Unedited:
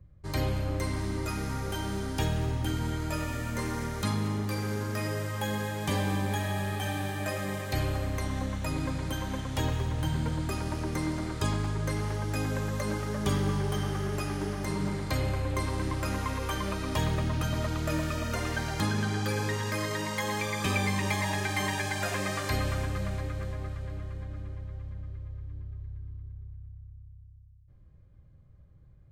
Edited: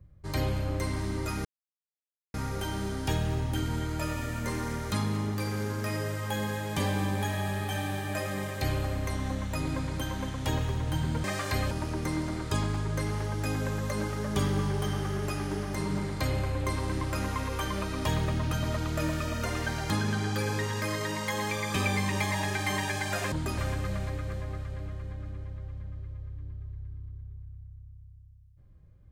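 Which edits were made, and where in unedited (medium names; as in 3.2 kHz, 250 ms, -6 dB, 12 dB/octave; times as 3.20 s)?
1.45 s: insert silence 0.89 s
10.35–10.61 s: swap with 22.22–22.69 s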